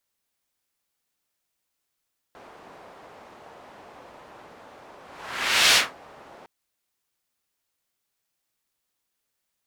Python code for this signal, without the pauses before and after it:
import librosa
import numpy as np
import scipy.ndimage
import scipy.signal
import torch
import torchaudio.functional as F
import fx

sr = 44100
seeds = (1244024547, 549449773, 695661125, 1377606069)

y = fx.whoosh(sr, seeds[0], length_s=4.11, peak_s=3.4, rise_s=0.78, fall_s=0.2, ends_hz=760.0, peak_hz=3500.0, q=1.1, swell_db=31.0)